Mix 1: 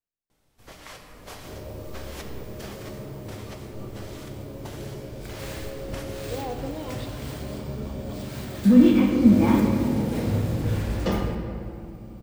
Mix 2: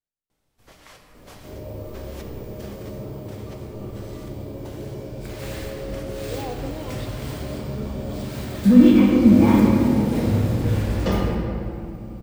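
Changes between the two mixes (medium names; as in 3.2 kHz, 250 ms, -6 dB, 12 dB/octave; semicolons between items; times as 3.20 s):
first sound -4.5 dB; second sound: send +6.0 dB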